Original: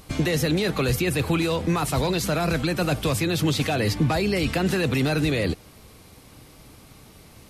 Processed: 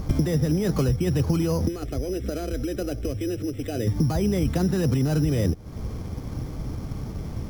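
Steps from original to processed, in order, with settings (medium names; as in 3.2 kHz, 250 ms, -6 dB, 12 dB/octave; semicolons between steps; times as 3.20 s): low-pass 1.4 kHz 6 dB/octave; bass shelf 260 Hz +12 dB; compression 8:1, threshold -29 dBFS, peak gain reduction 19 dB; 1.68–3.87 s: static phaser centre 390 Hz, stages 4; careless resampling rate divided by 8×, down filtered, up hold; trim +9 dB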